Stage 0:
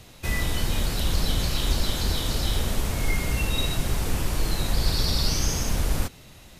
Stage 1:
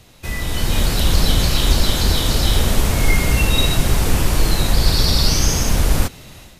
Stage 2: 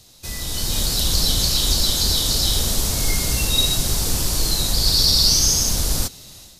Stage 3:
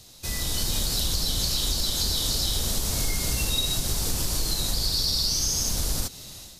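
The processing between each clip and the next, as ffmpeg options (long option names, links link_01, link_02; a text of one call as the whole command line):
ffmpeg -i in.wav -af "dynaudnorm=framelen=400:gausssize=3:maxgain=11.5dB" out.wav
ffmpeg -i in.wav -af "highshelf=frequency=3300:width_type=q:width=1.5:gain=10,volume=-7dB" out.wav
ffmpeg -i in.wav -af "acompressor=threshold=-22dB:ratio=6" out.wav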